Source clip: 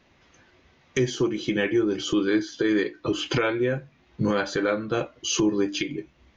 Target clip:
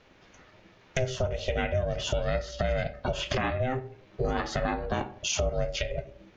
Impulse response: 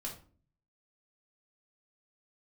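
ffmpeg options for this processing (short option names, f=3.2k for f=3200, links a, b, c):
-filter_complex "[0:a]asplit=2[a][b];[1:a]atrim=start_sample=2205,lowpass=3.3k[c];[b][c]afir=irnorm=-1:irlink=0,volume=-8.5dB[d];[a][d]amix=inputs=2:normalize=0,aeval=exprs='val(0)*sin(2*PI*260*n/s)':c=same,acompressor=threshold=-31dB:ratio=2.5,volume=3.5dB"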